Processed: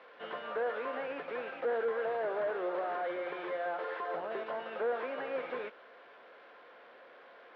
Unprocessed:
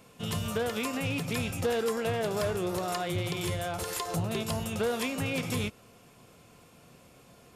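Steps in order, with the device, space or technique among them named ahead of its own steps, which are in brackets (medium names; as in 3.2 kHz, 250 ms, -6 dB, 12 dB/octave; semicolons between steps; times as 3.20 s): digital answering machine (band-pass 340–3400 Hz; one-bit delta coder 32 kbps, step -49.5 dBFS; cabinet simulation 420–3000 Hz, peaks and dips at 530 Hz +5 dB, 1.6 kHz +7 dB, 2.6 kHz -6 dB)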